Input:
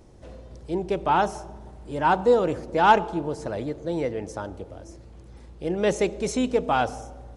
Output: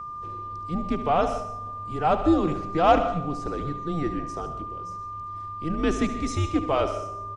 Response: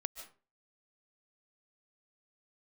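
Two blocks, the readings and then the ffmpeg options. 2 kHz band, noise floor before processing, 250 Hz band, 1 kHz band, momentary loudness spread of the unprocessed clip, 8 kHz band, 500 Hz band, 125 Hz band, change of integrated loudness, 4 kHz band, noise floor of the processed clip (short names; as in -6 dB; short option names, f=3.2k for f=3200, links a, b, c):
-6.0 dB, -47 dBFS, +2.5 dB, -1.5 dB, 20 LU, -4.0 dB, -2.5 dB, +3.5 dB, -2.0 dB, -2.0 dB, -36 dBFS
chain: -filter_complex "[0:a]aecho=1:1:73|125:0.251|0.168,afreqshift=-160,aeval=exprs='val(0)+0.0251*sin(2*PI*1200*n/s)':c=same,asplit=2[a][b];[1:a]atrim=start_sample=2205,lowpass=8.2k[c];[b][c]afir=irnorm=-1:irlink=0,volume=3.5dB[d];[a][d]amix=inputs=2:normalize=0,volume=-8.5dB"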